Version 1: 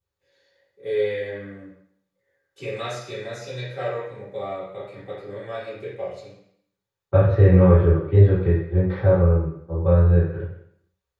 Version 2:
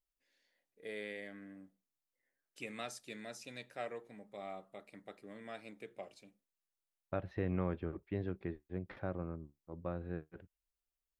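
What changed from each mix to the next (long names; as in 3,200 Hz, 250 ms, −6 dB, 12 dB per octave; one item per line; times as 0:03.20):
reverb: off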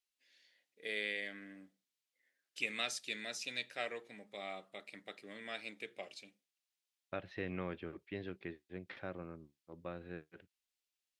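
second voice −3.5 dB
master: add meter weighting curve D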